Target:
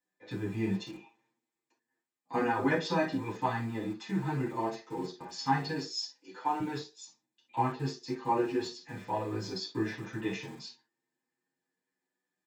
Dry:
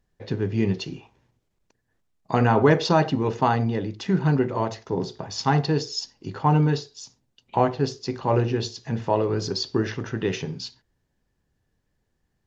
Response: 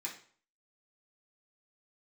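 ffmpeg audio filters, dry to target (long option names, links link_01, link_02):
-filter_complex "[0:a]asettb=1/sr,asplit=3[link_01][link_02][link_03];[link_01]atrim=end=5.854[link_04];[link_02]atrim=start=5.85:end=6.6,asetpts=PTS-STARTPTS,afade=type=in:duration=0.004:curve=qsin,afade=type=out:start_time=0.746:duration=0.004:curve=qsin,bass=frequency=250:gain=-14,treble=frequency=4000:gain=4[link_05];[link_03]atrim=start=6.596[link_06];[link_04][link_05]acrossfade=duration=0.004:curve1=hsin:curve2=qsin[link_07];[link_07][link_06]acrossfade=duration=0.004:curve1=qsin:curve2=hsin,acrossover=split=190|610|3000[link_08][link_09][link_10][link_11];[link_08]aeval=exprs='val(0)*gte(abs(val(0)),0.0158)':channel_layout=same[link_12];[link_12][link_09][link_10][link_11]amix=inputs=4:normalize=0[link_13];[1:a]atrim=start_sample=2205,atrim=end_sample=3528[link_14];[link_13][link_14]afir=irnorm=-1:irlink=0,asplit=2[link_15][link_16];[link_16]adelay=7.6,afreqshift=0.32[link_17];[link_15][link_17]amix=inputs=2:normalize=1,volume=-4dB"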